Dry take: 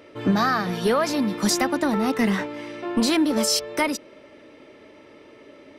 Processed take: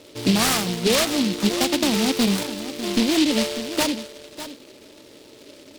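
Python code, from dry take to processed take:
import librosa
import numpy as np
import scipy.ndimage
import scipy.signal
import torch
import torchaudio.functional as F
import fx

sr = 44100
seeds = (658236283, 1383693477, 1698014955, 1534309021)

y = scipy.signal.sosfilt(scipy.signal.butter(4, 1800.0, 'lowpass', fs=sr, output='sos'), x)
y = y + 10.0 ** (-12.5 / 20.0) * np.pad(y, (int(598 * sr / 1000.0), 0))[:len(y)]
y = fx.noise_mod_delay(y, sr, seeds[0], noise_hz=3400.0, depth_ms=0.19)
y = F.gain(torch.from_numpy(y), 1.5).numpy()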